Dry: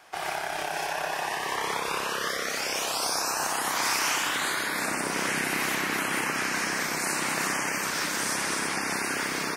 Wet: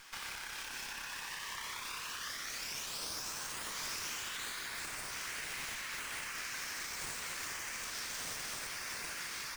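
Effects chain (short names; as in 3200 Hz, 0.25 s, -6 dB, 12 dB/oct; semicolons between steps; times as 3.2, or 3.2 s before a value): steep high-pass 920 Hz 48 dB/oct; tilt +4 dB/oct; compressor 2.5:1, threshold -40 dBFS, peak gain reduction 16 dB; running maximum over 3 samples; gain -4.5 dB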